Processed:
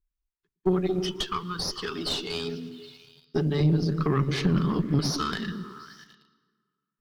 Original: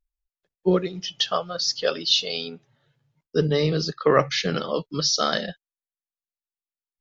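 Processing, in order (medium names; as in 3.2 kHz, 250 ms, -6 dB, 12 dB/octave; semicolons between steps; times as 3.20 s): 3.60–4.99 s: tone controls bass +12 dB, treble -1 dB; on a send at -21 dB: reverberation RT60 1.9 s, pre-delay 113 ms; on the sum: compression 4:1, threshold -25 dBFS, peak gain reduction 12.5 dB; elliptic band-stop 410–950 Hz; repeats whose band climbs or falls 110 ms, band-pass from 200 Hz, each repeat 0.7 oct, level -3 dB; in parallel at -8.5 dB: bit crusher 8-bit; on the sum: valve stage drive 20 dB, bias 0.6; treble shelf 2.1 kHz -10 dB; trim +5.5 dB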